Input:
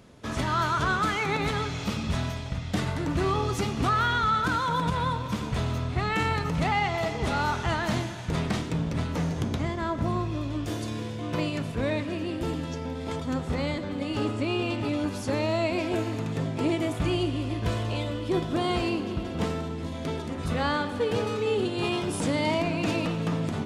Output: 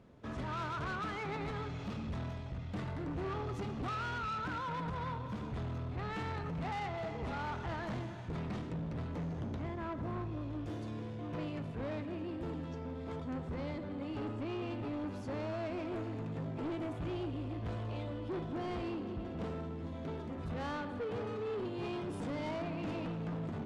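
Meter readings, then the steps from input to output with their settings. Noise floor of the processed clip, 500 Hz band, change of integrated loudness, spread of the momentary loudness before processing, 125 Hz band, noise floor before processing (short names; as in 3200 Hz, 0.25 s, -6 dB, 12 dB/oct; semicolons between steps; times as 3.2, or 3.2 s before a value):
-43 dBFS, -11.0 dB, -11.5 dB, 6 LU, -10.5 dB, -35 dBFS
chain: LPF 1400 Hz 6 dB/oct; soft clip -28 dBFS, distortion -11 dB; gain -6.5 dB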